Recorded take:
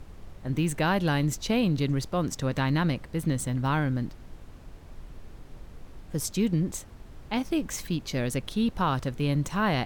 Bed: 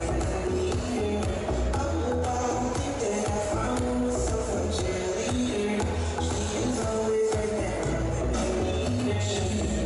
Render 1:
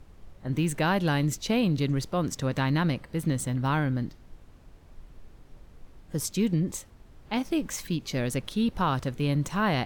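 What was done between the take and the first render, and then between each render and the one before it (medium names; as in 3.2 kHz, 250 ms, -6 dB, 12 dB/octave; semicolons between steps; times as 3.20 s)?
noise print and reduce 6 dB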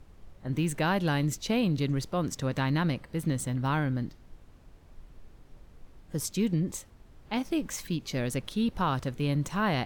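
trim -2 dB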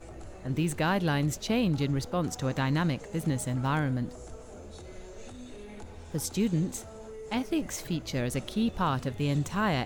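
add bed -18.5 dB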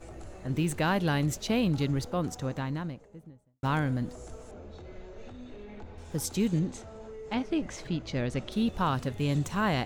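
1.86–3.63 s: studio fade out; 4.51–5.98 s: distance through air 190 m; 6.59–8.52 s: distance through air 100 m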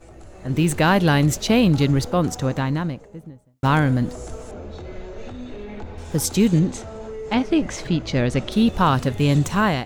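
level rider gain up to 10.5 dB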